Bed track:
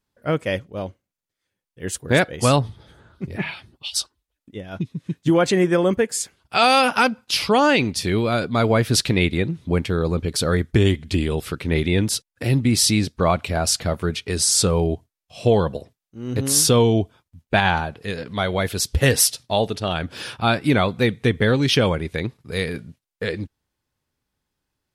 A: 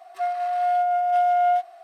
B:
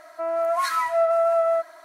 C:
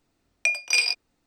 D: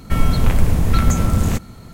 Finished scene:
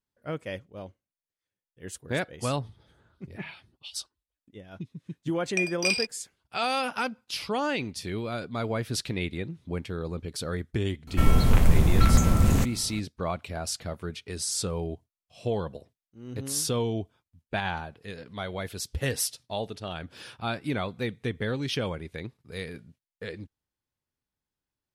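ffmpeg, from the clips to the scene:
ffmpeg -i bed.wav -i cue0.wav -i cue1.wav -i cue2.wav -i cue3.wav -filter_complex "[0:a]volume=-12dB[link_01];[3:a]agate=range=-16dB:threshold=-38dB:ratio=16:release=144:detection=peak,atrim=end=1.26,asetpts=PTS-STARTPTS,volume=-5dB,afade=type=in:duration=0.004:curve=hsin,afade=type=out:start_time=1.256:duration=0.004:curve=hsin,adelay=5120[link_02];[4:a]atrim=end=1.93,asetpts=PTS-STARTPTS,volume=-4dB,afade=type=in:duration=0.004:curve=hsin,afade=type=out:start_time=1.926:duration=0.004:curve=hsin,adelay=11070[link_03];[link_01][link_02][link_03]amix=inputs=3:normalize=0" out.wav

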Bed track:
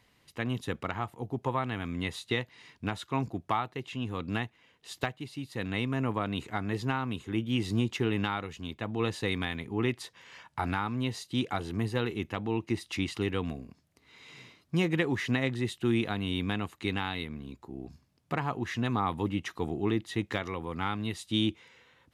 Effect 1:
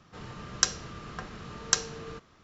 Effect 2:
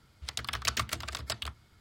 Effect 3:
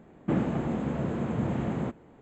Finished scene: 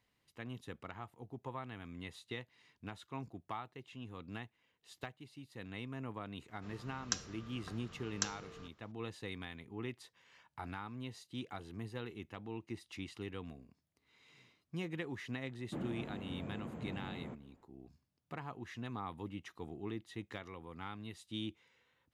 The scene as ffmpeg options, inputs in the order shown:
ffmpeg -i bed.wav -i cue0.wav -i cue1.wav -i cue2.wav -filter_complex "[0:a]volume=-13.5dB[link_01];[1:a]atrim=end=2.43,asetpts=PTS-STARTPTS,volume=-12dB,afade=type=in:duration=0.004:curve=hsin,afade=type=out:start_time=2.426:duration=0.004:curve=hsin,adelay=6490[link_02];[3:a]atrim=end=2.21,asetpts=PTS-STARTPTS,volume=-15.5dB,afade=type=in:duration=0.004:curve=hsin,afade=type=out:start_time=2.206:duration=0.004:curve=hsin,adelay=15440[link_03];[link_01][link_02][link_03]amix=inputs=3:normalize=0" out.wav

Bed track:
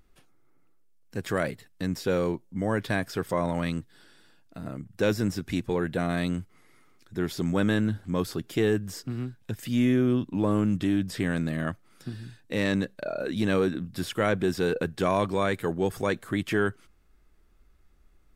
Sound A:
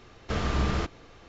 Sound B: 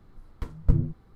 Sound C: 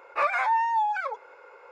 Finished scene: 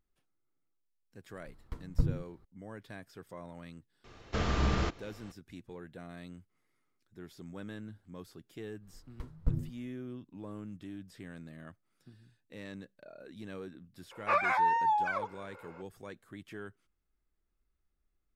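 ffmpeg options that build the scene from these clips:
ffmpeg -i bed.wav -i cue0.wav -i cue1.wav -i cue2.wav -filter_complex "[2:a]asplit=2[link_01][link_02];[0:a]volume=-19.5dB[link_03];[link_01]atrim=end=1.15,asetpts=PTS-STARTPTS,volume=-7.5dB,afade=type=in:duration=0.004:curve=hsin,afade=type=out:start_time=1.146:duration=0.004:curve=hsin,adelay=1300[link_04];[1:a]atrim=end=1.28,asetpts=PTS-STARTPTS,volume=-2.5dB,afade=type=in:duration=0.004:curve=hsin,afade=type=out:start_time=1.276:duration=0.004:curve=hsin,adelay=4040[link_05];[link_02]atrim=end=1.15,asetpts=PTS-STARTPTS,volume=-9.5dB,afade=type=in:duration=0.1,afade=type=out:start_time=1.05:duration=0.1,adelay=8780[link_06];[3:a]atrim=end=1.71,asetpts=PTS-STARTPTS,volume=-3.5dB,afade=type=in:duration=0.004:curve=hsin,afade=type=out:start_time=1.706:duration=0.004:curve=hsin,adelay=14110[link_07];[link_03][link_04][link_05][link_06][link_07]amix=inputs=5:normalize=0" out.wav

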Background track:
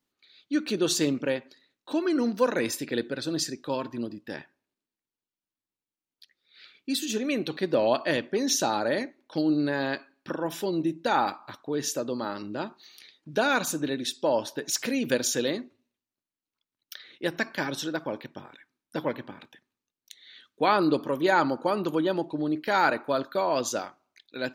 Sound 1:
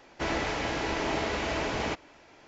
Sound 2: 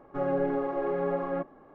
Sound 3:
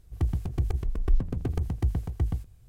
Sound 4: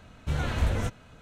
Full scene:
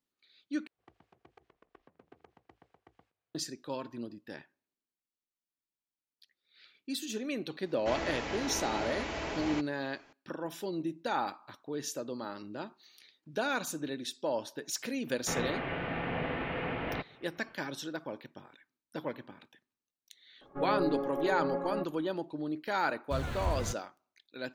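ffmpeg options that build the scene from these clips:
ffmpeg -i bed.wav -i cue0.wav -i cue1.wav -i cue2.wav -i cue3.wav -filter_complex "[1:a]asplit=2[link_01][link_02];[0:a]volume=-8dB[link_03];[3:a]highpass=570,lowpass=2800[link_04];[link_02]highpass=frequency=200:width_type=q:width=0.5412,highpass=frequency=200:width_type=q:width=1.307,lowpass=frequency=3200:width_type=q:width=0.5176,lowpass=frequency=3200:width_type=q:width=0.7071,lowpass=frequency=3200:width_type=q:width=1.932,afreqshift=-160[link_05];[2:a]lowpass=frequency=1900:poles=1[link_06];[4:a]aeval=exprs='val(0)*gte(abs(val(0)),0.00944)':channel_layout=same[link_07];[link_03]asplit=2[link_08][link_09];[link_08]atrim=end=0.674[link_10];[link_04]atrim=end=2.68,asetpts=PTS-STARTPTS,volume=-14.5dB[link_11];[link_09]atrim=start=3.346[link_12];[link_01]atrim=end=2.47,asetpts=PTS-STARTPTS,volume=-6.5dB,afade=type=in:duration=0.004:curve=hsin,afade=type=out:start_time=2.466:duration=0.004:curve=hsin,adelay=7660[link_13];[link_05]atrim=end=2.47,asetpts=PTS-STARTPTS,volume=-4dB,afade=type=in:duration=0.004:curve=hsin,afade=type=out:start_time=2.466:duration=0.004:curve=hsin,adelay=15070[link_14];[link_06]atrim=end=1.74,asetpts=PTS-STARTPTS,volume=-4.5dB,afade=type=in:duration=0.004:curve=hsin,afade=type=out:start_time=1.736:duration=0.004:curve=hsin,adelay=20410[link_15];[link_07]atrim=end=1.21,asetpts=PTS-STARTPTS,volume=-7.5dB,afade=type=in:duration=0.004:curve=hsin,afade=type=out:start_time=1.206:duration=0.004:curve=hsin,adelay=22840[link_16];[link_10][link_11]acrossfade=duration=0.004:curve1=hsin:curve2=hsin[link_17];[link_17][link_12]acrossfade=duration=0.004:curve1=hsin:curve2=hsin[link_18];[link_18][link_13][link_14][link_15][link_16]amix=inputs=5:normalize=0" out.wav

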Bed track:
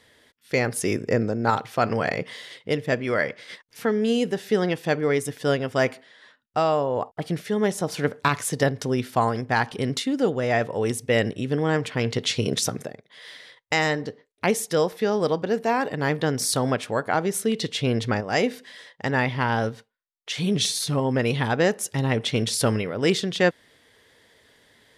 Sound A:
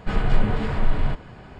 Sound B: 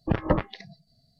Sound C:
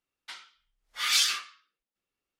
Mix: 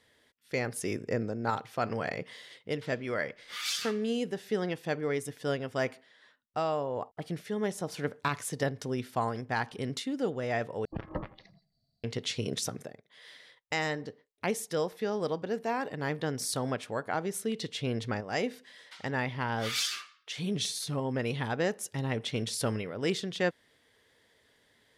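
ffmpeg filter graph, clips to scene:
ffmpeg -i bed.wav -i cue0.wav -i cue1.wav -i cue2.wav -filter_complex "[3:a]asplit=2[link_01][link_02];[0:a]volume=-9dB[link_03];[2:a]asplit=2[link_04][link_05];[link_05]adelay=83,lowpass=frequency=2100:poles=1,volume=-17dB,asplit=2[link_06][link_07];[link_07]adelay=83,lowpass=frequency=2100:poles=1,volume=0.47,asplit=2[link_08][link_09];[link_09]adelay=83,lowpass=frequency=2100:poles=1,volume=0.47,asplit=2[link_10][link_11];[link_11]adelay=83,lowpass=frequency=2100:poles=1,volume=0.47[link_12];[link_04][link_06][link_08][link_10][link_12]amix=inputs=5:normalize=0[link_13];[link_03]asplit=2[link_14][link_15];[link_14]atrim=end=10.854[link_16];[link_13]atrim=end=1.19,asetpts=PTS-STARTPTS,volume=-13.5dB[link_17];[link_15]atrim=start=12.036[link_18];[link_01]atrim=end=2.39,asetpts=PTS-STARTPTS,volume=-9.5dB,afade=type=in:duration=0.004:curve=hsin,afade=type=out:start_time=2.386:duration=0.004:curve=hsin,adelay=2530[link_19];[link_02]atrim=end=2.39,asetpts=PTS-STARTPTS,volume=-7.5dB,afade=type=in:duration=0.004:curve=hsin,afade=type=out:start_time=2.386:duration=0.004:curve=hsin,adelay=18630[link_20];[link_16][link_17]acrossfade=duration=0.004:curve1=hsin:curve2=hsin[link_21];[link_21][link_18]acrossfade=duration=0.004:curve1=hsin:curve2=hsin[link_22];[link_22][link_19][link_20]amix=inputs=3:normalize=0" out.wav

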